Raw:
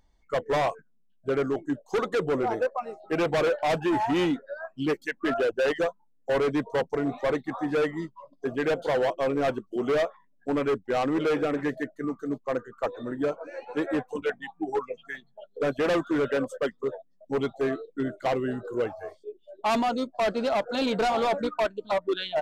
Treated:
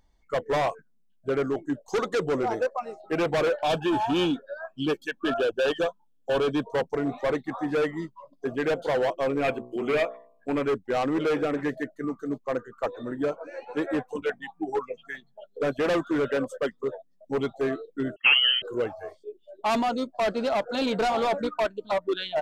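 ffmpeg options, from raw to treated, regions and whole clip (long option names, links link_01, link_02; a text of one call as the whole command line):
ffmpeg -i in.wav -filter_complex "[0:a]asettb=1/sr,asplit=3[link_01][link_02][link_03];[link_01]atrim=end=1.884[link_04];[link_02]atrim=start=1.88:end=3.02,asetpts=PTS-STARTPTS,afade=type=in:duration=0.004:curve=qsin,afade=type=out:start_time=1.136:duration=0.004:curve=qsin,equalizer=frequency=6000:width_type=o:width=1.1:gain=5.5,acompressor=mode=upward:threshold=-40dB:ratio=2.5:attack=3.2:release=140:knee=2.83:detection=peak[link_05];[link_03]atrim=start=3.016[link_06];[link_04][link_05]acrossfade=duration=0.004:curve1=hsin:curve2=qsin[link_07];[link_07][link_06]acrossfade=duration=0.004:curve1=qsin:curve2=hsin,asettb=1/sr,asplit=3[link_08][link_09][link_10];[link_08]atrim=end=3.634[link_11];[link_09]atrim=start=3.63:end=6.63,asetpts=PTS-STARTPTS,afade=type=in:duration=0.004:curve=qsin,afade=type=out:start_time=2.996:duration=0.004:curve=qsin,asuperstop=centerf=2000:order=8:qfactor=5.2,equalizer=frequency=3300:width_type=o:width=0.28:gain=8.5[link_12];[link_10]atrim=start=6.626[link_13];[link_11][link_12]acrossfade=duration=0.004:curve1=hsin:curve2=qsin[link_14];[link_14][link_13]acrossfade=duration=0.004:curve1=qsin:curve2=hsin,asettb=1/sr,asplit=3[link_15][link_16][link_17];[link_15]atrim=end=9.394[link_18];[link_16]atrim=start=9.39:end=10.58,asetpts=PTS-STARTPTS,afade=type=in:duration=0.004:curve=qsin,afade=type=out:start_time=1.186:duration=0.004:curve=qsin,equalizer=frequency=2400:width=5.9:gain=12,bandreject=frequency=5800:width=6.9,bandreject=frequency=61.27:width_type=h:width=4,bandreject=frequency=122.54:width_type=h:width=4,bandreject=frequency=183.81:width_type=h:width=4,bandreject=frequency=245.08:width_type=h:width=4,bandreject=frequency=306.35:width_type=h:width=4,bandreject=frequency=367.62:width_type=h:width=4,bandreject=frequency=428.89:width_type=h:width=4,bandreject=frequency=490.16:width_type=h:width=4,bandreject=frequency=551.43:width_type=h:width=4,bandreject=frequency=612.7:width_type=h:width=4,bandreject=frequency=673.97:width_type=h:width=4,bandreject=frequency=735.24:width_type=h:width=4,bandreject=frequency=796.51:width_type=h:width=4,bandreject=frequency=857.78:width_type=h:width=4,bandreject=frequency=919.05:width_type=h:width=4,bandreject=frequency=980.32:width_type=h:width=4,bandreject=frequency=1041.59:width_type=h:width=4,bandreject=frequency=1102.86:width_type=h:width=4,bandreject=frequency=1164.13:width_type=h:width=4[link_19];[link_17]atrim=start=10.576[link_20];[link_18][link_19]acrossfade=duration=0.004:curve1=hsin:curve2=qsin[link_21];[link_21][link_20]acrossfade=duration=0.004:curve1=qsin:curve2=hsin,asettb=1/sr,asplit=3[link_22][link_23][link_24];[link_22]atrim=end=18.164[link_25];[link_23]atrim=start=18.16:end=18.62,asetpts=PTS-STARTPTS,afade=type=in:duration=0.004:curve=qsin,afade=type=out:start_time=0.456:duration=0.004:curve=qsin,agate=range=-24dB:threshold=-47dB:ratio=16:release=100:detection=peak,acontrast=79,lowpass=frequency=2800:width_type=q:width=0.5098,lowpass=frequency=2800:width_type=q:width=0.6013,lowpass=frequency=2800:width_type=q:width=0.9,lowpass=frequency=2800:width_type=q:width=2.563,afreqshift=-3300[link_26];[link_24]atrim=start=18.616[link_27];[link_25][link_26]acrossfade=duration=0.004:curve1=hsin:curve2=qsin[link_28];[link_28][link_27]acrossfade=duration=0.004:curve1=qsin:curve2=hsin" out.wav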